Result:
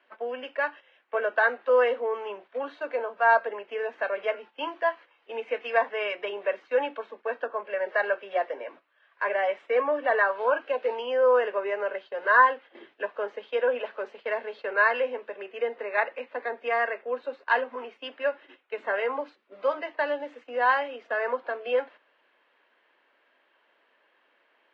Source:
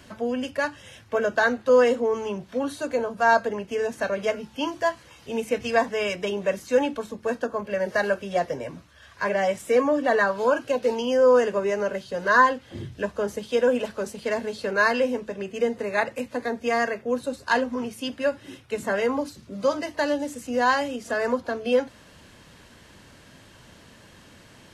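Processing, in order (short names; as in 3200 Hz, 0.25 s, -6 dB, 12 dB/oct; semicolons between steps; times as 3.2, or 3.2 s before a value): LPF 2800 Hz 24 dB/oct; gate -39 dBFS, range -11 dB; Bessel high-pass 570 Hz, order 6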